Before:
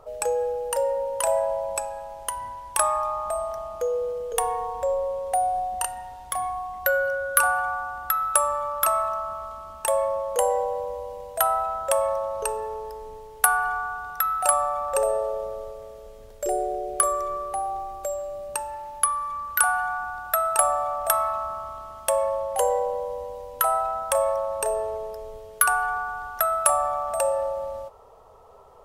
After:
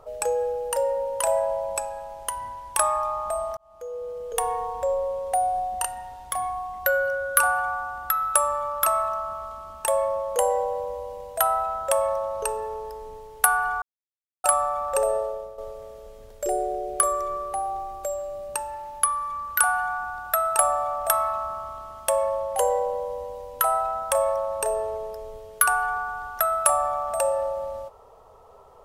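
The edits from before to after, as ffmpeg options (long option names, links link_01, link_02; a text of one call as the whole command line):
ffmpeg -i in.wav -filter_complex "[0:a]asplit=5[link_01][link_02][link_03][link_04][link_05];[link_01]atrim=end=3.57,asetpts=PTS-STARTPTS,afade=type=out:start_time=3.566:duration=0.004:curve=hsin[link_06];[link_02]atrim=start=3.57:end=13.82,asetpts=PTS-STARTPTS,afade=type=in:duration=0.94,afade=type=out:start_time=10.246:duration=0.004:curve=hsin[link_07];[link_03]atrim=start=13.82:end=14.44,asetpts=PTS-STARTPTS,volume=0[link_08];[link_04]atrim=start=14.44:end=15.58,asetpts=PTS-STARTPTS,afade=type=in:duration=0.004:curve=hsin,afade=type=out:start_time=0.73:duration=0.41:silence=0.298538[link_09];[link_05]atrim=start=15.58,asetpts=PTS-STARTPTS,afade=type=in:duration=0.004:curve=hsin:silence=0.298538[link_10];[link_06][link_07][link_08][link_09][link_10]concat=n=5:v=0:a=1" out.wav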